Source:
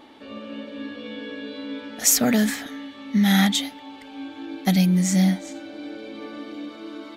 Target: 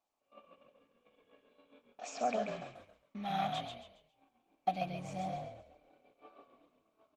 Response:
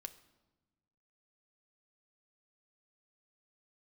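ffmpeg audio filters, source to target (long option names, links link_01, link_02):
-filter_complex "[0:a]asplit=3[link_01][link_02][link_03];[link_01]bandpass=frequency=730:width_type=q:width=8,volume=0dB[link_04];[link_02]bandpass=frequency=1090:width_type=q:width=8,volume=-6dB[link_05];[link_03]bandpass=frequency=2440:width_type=q:width=8,volume=-9dB[link_06];[link_04][link_05][link_06]amix=inputs=3:normalize=0,agate=range=-27dB:threshold=-48dB:ratio=16:detection=peak,asplit=2[link_07][link_08];[link_08]asplit=4[link_09][link_10][link_11][link_12];[link_09]adelay=136,afreqshift=-39,volume=-5dB[link_13];[link_10]adelay=272,afreqshift=-78,volume=-14.9dB[link_14];[link_11]adelay=408,afreqshift=-117,volume=-24.8dB[link_15];[link_12]adelay=544,afreqshift=-156,volume=-34.7dB[link_16];[link_13][link_14][link_15][link_16]amix=inputs=4:normalize=0[link_17];[link_07][link_17]amix=inputs=2:normalize=0" -ar 48000 -c:a libopus -b:a 20k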